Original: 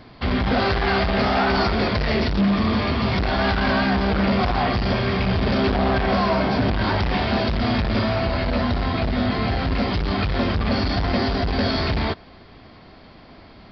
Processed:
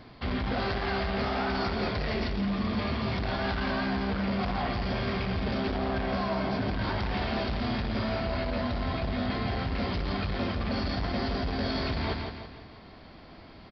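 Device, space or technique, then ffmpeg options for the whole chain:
compression on the reversed sound: -af "aecho=1:1:168|336|504|672|840:0.376|0.165|0.0728|0.032|0.0141,areverse,acompressor=threshold=-22dB:ratio=6,areverse,volume=-4.5dB"

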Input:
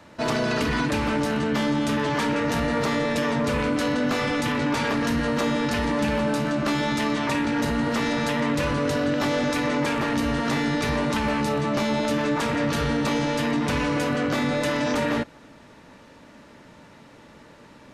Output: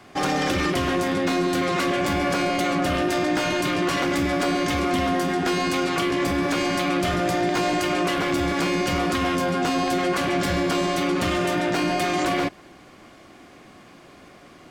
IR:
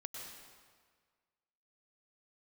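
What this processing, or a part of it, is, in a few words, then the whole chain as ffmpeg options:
nightcore: -af "asetrate=53802,aresample=44100,volume=1dB"

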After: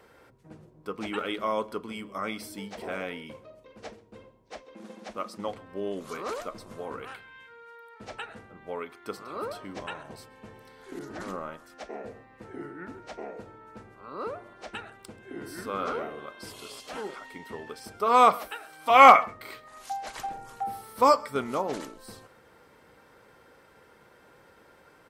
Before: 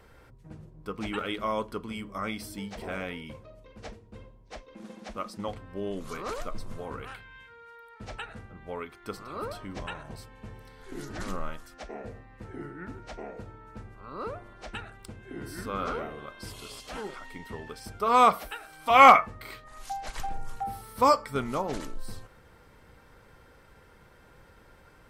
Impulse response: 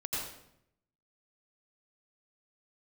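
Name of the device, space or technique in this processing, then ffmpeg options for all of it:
filter by subtraction: -filter_complex "[0:a]asplit=2[a][b];[b]lowpass=390,volume=-1[c];[a][c]amix=inputs=2:normalize=0,aecho=1:1:133:0.0631,asettb=1/sr,asplit=3[d][e][f];[d]atrim=end=10.994[g];[e]atrim=start=10.99:end=11.7,asetpts=PTS-STARTPTS,afade=t=in:d=0.004:c=qsin,afade=t=out:st=0.706:d=0.004:c=qsin,adynamicequalizer=threshold=0.00251:dfrequency=2000:dqfactor=0.7:tfrequency=2000:tqfactor=0.7:attack=5:release=100:ratio=0.375:range=3.5:mode=cutabove:tftype=highshelf[h];[f]atrim=start=11.696[i];[g][h]acrossfade=d=0.004:c1=hsin:c2=qsin[j];[j][i]acrossfade=d=0.004:c1=qsin:c2=hsin"

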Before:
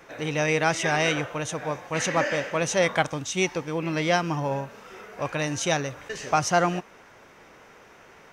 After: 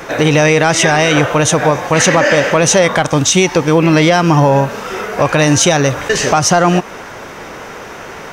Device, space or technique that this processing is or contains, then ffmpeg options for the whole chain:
mastering chain: -af "equalizer=f=2.3k:t=o:w=0.77:g=-2.5,acompressor=threshold=-28dB:ratio=2.5,asoftclip=type=tanh:threshold=-17dB,alimiter=level_in=23dB:limit=-1dB:release=50:level=0:latency=1,volume=-1dB"

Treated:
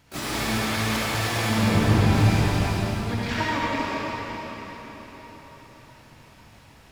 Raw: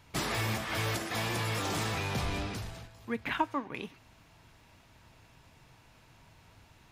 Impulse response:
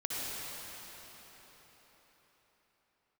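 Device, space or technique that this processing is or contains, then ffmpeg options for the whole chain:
shimmer-style reverb: -filter_complex "[0:a]asplit=3[a][b][c];[a]afade=t=out:st=1.49:d=0.02[d];[b]aemphasis=mode=reproduction:type=riaa,afade=t=in:st=1.49:d=0.02,afade=t=out:st=2.05:d=0.02[e];[c]afade=t=in:st=2.05:d=0.02[f];[d][e][f]amix=inputs=3:normalize=0,asplit=2[g][h];[h]asetrate=88200,aresample=44100,atempo=0.5,volume=-5dB[i];[g][i]amix=inputs=2:normalize=0[j];[1:a]atrim=start_sample=2205[k];[j][k]afir=irnorm=-1:irlink=0,volume=1.5dB"

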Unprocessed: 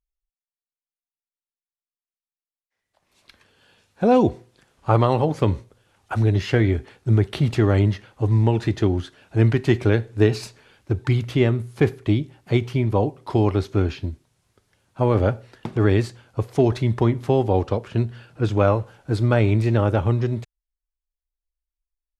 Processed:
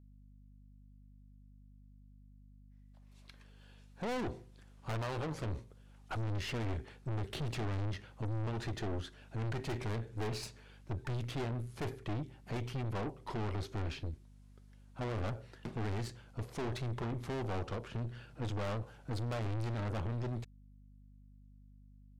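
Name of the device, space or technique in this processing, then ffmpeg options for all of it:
valve amplifier with mains hum: -af "aeval=exprs='(tanh(28.2*val(0)+0.45)-tanh(0.45))/28.2':c=same,aeval=exprs='val(0)+0.00282*(sin(2*PI*50*n/s)+sin(2*PI*2*50*n/s)/2+sin(2*PI*3*50*n/s)/3+sin(2*PI*4*50*n/s)/4+sin(2*PI*5*50*n/s)/5)':c=same,volume=-6dB"

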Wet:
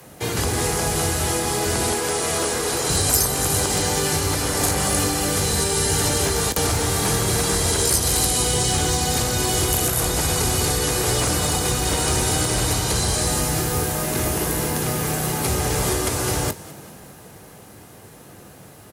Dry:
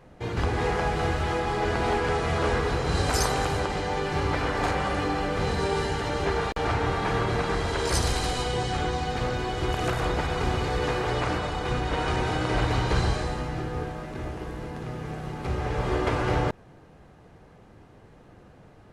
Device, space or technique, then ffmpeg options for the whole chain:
FM broadcast chain: -filter_complex "[0:a]asettb=1/sr,asplit=3[a][b][c];[a]atrim=end=1.944[d];[b]atrim=start=1.94:end=2.9,asetpts=PTS-STARTPTS,afade=t=in:d=0.004:c=qsin,afade=t=out:st=0.956:d=0.004:c=qsin,bass=f=250:g=-11,treble=f=4k:g=-2[e];[c]atrim=start=2.896[f];[d][e]acrossfade=d=0.004:c1=hsin:c2=qsin[g];[g][f]acrossfade=d=0.004:c1=qsin:c2=hsin,highpass=80,asplit=2[h][i];[i]adelay=21,volume=-13dB[j];[h][j]amix=inputs=2:normalize=0,dynaudnorm=f=410:g=21:m=10dB,acrossover=split=92|380|760|4700[k][l][m][n][o];[k]acompressor=threshold=-29dB:ratio=4[p];[l]acompressor=threshold=-33dB:ratio=4[q];[m]acompressor=threshold=-37dB:ratio=4[r];[n]acompressor=threshold=-39dB:ratio=4[s];[o]acompressor=threshold=-44dB:ratio=4[t];[p][q][r][s][t]amix=inputs=5:normalize=0,aemphasis=mode=production:type=50fm,alimiter=limit=-19dB:level=0:latency=1:release=465,asoftclip=type=hard:threshold=-22.5dB,lowpass=f=15k:w=0.5412,lowpass=f=15k:w=1.3066,aemphasis=mode=production:type=50fm,asplit=5[u][v][w][x][y];[v]adelay=200,afreqshift=34,volume=-18dB[z];[w]adelay=400,afreqshift=68,volume=-23.8dB[aa];[x]adelay=600,afreqshift=102,volume=-29.7dB[ab];[y]adelay=800,afreqshift=136,volume=-35.5dB[ac];[u][z][aa][ab][ac]amix=inputs=5:normalize=0,volume=7.5dB"

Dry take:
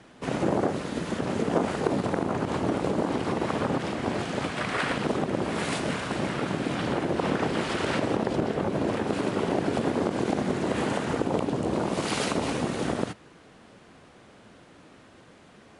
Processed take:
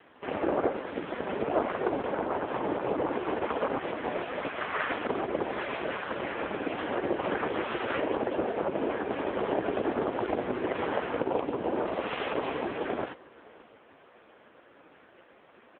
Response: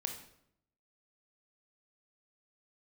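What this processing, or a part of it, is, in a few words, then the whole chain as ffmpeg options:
satellite phone: -af "highpass=360,lowpass=3k,aecho=1:1:566:0.075,volume=3dB" -ar 8000 -c:a libopencore_amrnb -b:a 5150

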